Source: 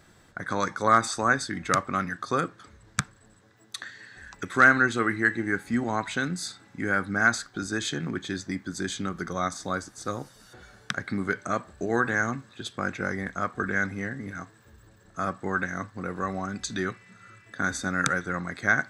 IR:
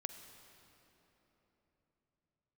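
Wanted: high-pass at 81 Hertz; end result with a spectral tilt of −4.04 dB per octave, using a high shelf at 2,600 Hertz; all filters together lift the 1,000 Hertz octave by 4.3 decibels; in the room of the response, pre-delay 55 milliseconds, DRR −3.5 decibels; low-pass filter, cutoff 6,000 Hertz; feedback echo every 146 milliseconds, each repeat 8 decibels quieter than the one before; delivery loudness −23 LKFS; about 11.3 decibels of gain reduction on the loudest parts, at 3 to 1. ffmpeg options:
-filter_complex "[0:a]highpass=81,lowpass=6000,equalizer=frequency=1000:width_type=o:gain=5,highshelf=frequency=2600:gain=4,acompressor=threshold=-25dB:ratio=3,aecho=1:1:146|292|438|584|730:0.398|0.159|0.0637|0.0255|0.0102,asplit=2[link_01][link_02];[1:a]atrim=start_sample=2205,adelay=55[link_03];[link_02][link_03]afir=irnorm=-1:irlink=0,volume=5.5dB[link_04];[link_01][link_04]amix=inputs=2:normalize=0,volume=1.5dB"

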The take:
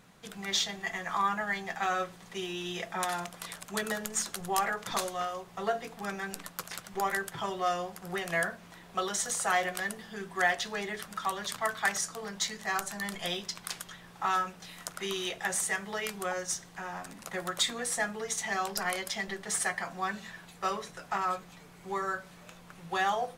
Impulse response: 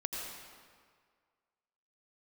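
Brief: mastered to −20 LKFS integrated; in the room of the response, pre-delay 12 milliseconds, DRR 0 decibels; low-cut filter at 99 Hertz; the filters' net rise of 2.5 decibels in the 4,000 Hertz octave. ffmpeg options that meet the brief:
-filter_complex "[0:a]highpass=99,equalizer=frequency=4000:width_type=o:gain=3,asplit=2[link_01][link_02];[1:a]atrim=start_sample=2205,adelay=12[link_03];[link_02][link_03]afir=irnorm=-1:irlink=0,volume=-2.5dB[link_04];[link_01][link_04]amix=inputs=2:normalize=0,volume=9.5dB"

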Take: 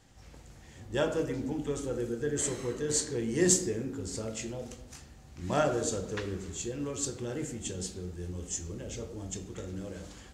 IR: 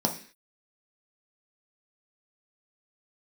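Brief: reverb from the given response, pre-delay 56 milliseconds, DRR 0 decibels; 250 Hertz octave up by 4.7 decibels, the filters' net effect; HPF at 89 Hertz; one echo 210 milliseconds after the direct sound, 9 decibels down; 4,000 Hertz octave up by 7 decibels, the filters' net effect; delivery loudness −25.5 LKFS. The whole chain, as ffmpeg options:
-filter_complex "[0:a]highpass=89,equalizer=frequency=250:width_type=o:gain=6.5,equalizer=frequency=4000:width_type=o:gain=9,aecho=1:1:210:0.355,asplit=2[link_01][link_02];[1:a]atrim=start_sample=2205,adelay=56[link_03];[link_02][link_03]afir=irnorm=-1:irlink=0,volume=-9.5dB[link_04];[link_01][link_04]amix=inputs=2:normalize=0,volume=-1.5dB"

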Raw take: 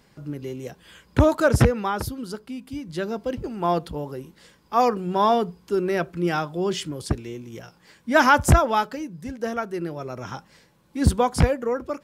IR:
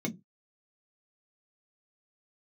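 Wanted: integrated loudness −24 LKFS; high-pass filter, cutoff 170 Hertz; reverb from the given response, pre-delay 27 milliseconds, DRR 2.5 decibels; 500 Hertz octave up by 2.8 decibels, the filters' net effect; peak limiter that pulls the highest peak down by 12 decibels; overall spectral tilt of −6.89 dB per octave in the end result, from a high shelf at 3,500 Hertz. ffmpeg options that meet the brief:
-filter_complex "[0:a]highpass=170,equalizer=frequency=500:width_type=o:gain=3.5,highshelf=frequency=3500:gain=4.5,alimiter=limit=-14dB:level=0:latency=1,asplit=2[link_01][link_02];[1:a]atrim=start_sample=2205,adelay=27[link_03];[link_02][link_03]afir=irnorm=-1:irlink=0,volume=-6dB[link_04];[link_01][link_04]amix=inputs=2:normalize=0,volume=-4.5dB"

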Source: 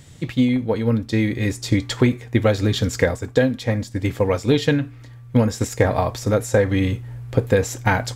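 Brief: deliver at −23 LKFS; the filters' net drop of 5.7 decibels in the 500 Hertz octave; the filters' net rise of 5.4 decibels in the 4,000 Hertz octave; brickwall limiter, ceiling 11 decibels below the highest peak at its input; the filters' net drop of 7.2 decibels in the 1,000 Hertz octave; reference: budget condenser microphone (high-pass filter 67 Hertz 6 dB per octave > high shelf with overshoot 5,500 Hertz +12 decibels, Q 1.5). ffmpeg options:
ffmpeg -i in.wav -af "equalizer=frequency=500:width_type=o:gain=-4.5,equalizer=frequency=1000:width_type=o:gain=-8,equalizer=frequency=4000:width_type=o:gain=8,alimiter=limit=-16.5dB:level=0:latency=1,highpass=frequency=67:poles=1,highshelf=frequency=5500:width_type=q:width=1.5:gain=12,volume=0.5dB" out.wav

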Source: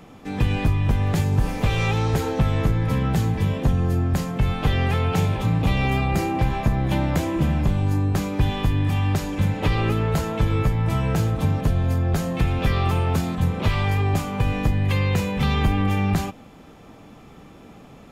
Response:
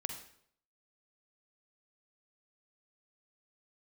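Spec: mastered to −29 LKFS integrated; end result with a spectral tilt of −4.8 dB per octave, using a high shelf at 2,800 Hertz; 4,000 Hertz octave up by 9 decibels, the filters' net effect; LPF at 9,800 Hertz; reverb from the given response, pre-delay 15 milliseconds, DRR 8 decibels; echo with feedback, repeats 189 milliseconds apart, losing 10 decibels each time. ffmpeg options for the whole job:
-filter_complex "[0:a]lowpass=9800,highshelf=frequency=2800:gain=4,equalizer=frequency=4000:width_type=o:gain=8.5,aecho=1:1:189|378|567|756:0.316|0.101|0.0324|0.0104,asplit=2[link_01][link_02];[1:a]atrim=start_sample=2205,adelay=15[link_03];[link_02][link_03]afir=irnorm=-1:irlink=0,volume=-8dB[link_04];[link_01][link_04]amix=inputs=2:normalize=0,volume=-8dB"

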